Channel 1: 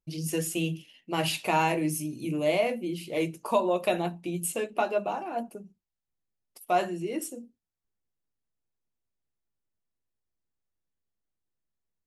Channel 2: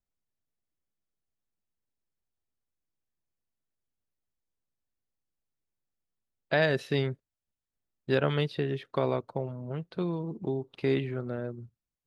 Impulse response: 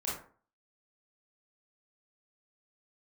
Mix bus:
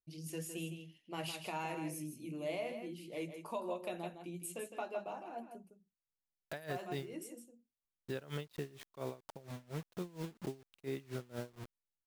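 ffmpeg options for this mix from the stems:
-filter_complex "[0:a]volume=-13.5dB,asplit=2[a][b];[b]volume=-8.5dB[c];[1:a]acrusher=bits=6:mix=0:aa=0.000001,aeval=exprs='val(0)*pow(10,-23*(0.5-0.5*cos(2*PI*4.3*n/s))/20)':c=same,volume=-4.5dB[d];[c]aecho=0:1:159:1[e];[a][d][e]amix=inputs=3:normalize=0,alimiter=level_in=5dB:limit=-24dB:level=0:latency=1:release=162,volume=-5dB"

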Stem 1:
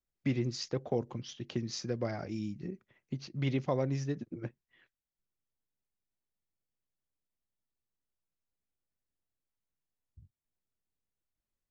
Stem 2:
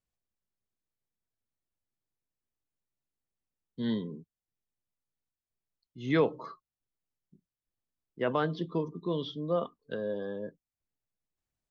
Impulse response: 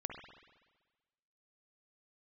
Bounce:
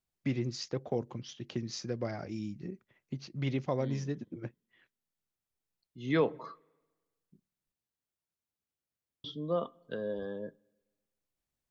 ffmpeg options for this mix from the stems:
-filter_complex "[0:a]highpass=63,volume=-1dB,asplit=2[a][b];[1:a]volume=-2.5dB,asplit=3[c][d][e];[c]atrim=end=7.72,asetpts=PTS-STARTPTS,afade=t=out:st=7.716:d=0.004:c=hsin[f];[d]atrim=start=7.72:end=9.24,asetpts=PTS-STARTPTS,volume=0[g];[e]atrim=start=9.24,asetpts=PTS-STARTPTS,afade=t=in:d=0.004:c=hsin[h];[f][g][h]concat=n=3:v=0:a=1,asplit=2[i][j];[j]volume=-22dB[k];[b]apad=whole_len=515971[l];[i][l]sidechaincompress=threshold=-40dB:ratio=8:attack=16:release=1400[m];[2:a]atrim=start_sample=2205[n];[k][n]afir=irnorm=-1:irlink=0[o];[a][m][o]amix=inputs=3:normalize=0"

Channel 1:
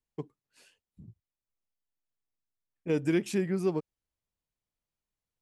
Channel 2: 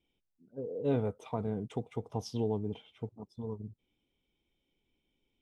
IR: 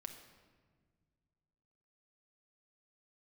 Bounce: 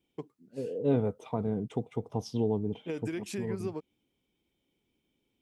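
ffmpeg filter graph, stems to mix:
-filter_complex "[0:a]acompressor=threshold=-32dB:ratio=6,volume=1dB[a];[1:a]lowshelf=f=360:g=10.5,volume=0dB[b];[a][b]amix=inputs=2:normalize=0,highpass=f=230:p=1"

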